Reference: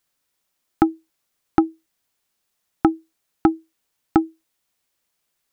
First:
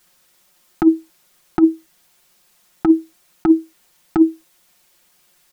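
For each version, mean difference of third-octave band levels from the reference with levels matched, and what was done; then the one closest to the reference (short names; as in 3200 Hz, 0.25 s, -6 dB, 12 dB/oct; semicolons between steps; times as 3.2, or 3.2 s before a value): 4.0 dB: comb 5.6 ms, depth 85%; negative-ratio compressor -20 dBFS, ratio -1; gain +8.5 dB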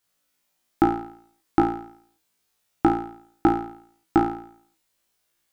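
11.5 dB: on a send: flutter echo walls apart 3 m, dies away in 0.59 s; on the sum: gain -3 dB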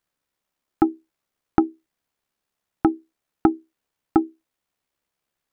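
2.0 dB: high shelf 2900 Hz -9.5 dB; AM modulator 69 Hz, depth 30%; gain +1 dB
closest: third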